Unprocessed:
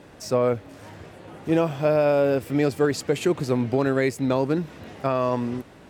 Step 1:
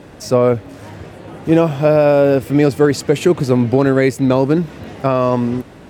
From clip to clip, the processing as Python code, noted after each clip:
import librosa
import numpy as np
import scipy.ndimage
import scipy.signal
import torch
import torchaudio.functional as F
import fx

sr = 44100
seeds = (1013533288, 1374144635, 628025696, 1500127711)

y = fx.low_shelf(x, sr, hz=480.0, db=4.0)
y = F.gain(torch.from_numpy(y), 6.5).numpy()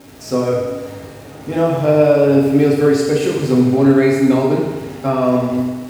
y = fx.dmg_crackle(x, sr, seeds[0], per_s=260.0, level_db=-26.0)
y = fx.rev_fdn(y, sr, rt60_s=1.4, lf_ratio=0.75, hf_ratio=1.0, size_ms=22.0, drr_db=-4.5)
y = F.gain(torch.from_numpy(y), -7.5).numpy()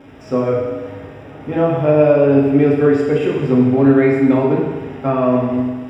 y = scipy.signal.savgol_filter(x, 25, 4, mode='constant')